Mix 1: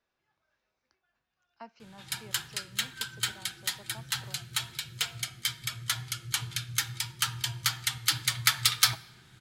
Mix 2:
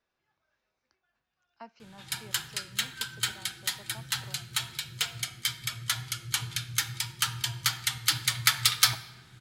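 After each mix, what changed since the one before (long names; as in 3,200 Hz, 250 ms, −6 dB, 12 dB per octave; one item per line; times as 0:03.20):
background: send +6.0 dB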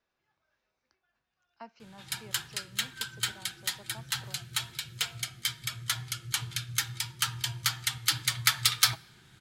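background: send −11.0 dB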